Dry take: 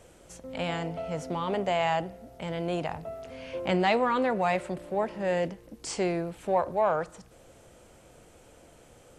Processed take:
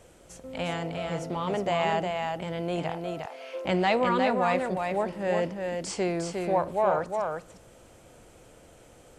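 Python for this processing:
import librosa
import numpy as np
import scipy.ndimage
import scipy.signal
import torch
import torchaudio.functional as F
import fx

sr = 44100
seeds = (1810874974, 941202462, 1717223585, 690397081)

y = fx.highpass(x, sr, hz=400.0, slope=24, at=(2.9, 3.65))
y = y + 10.0 ** (-4.5 / 20.0) * np.pad(y, (int(357 * sr / 1000.0), 0))[:len(y)]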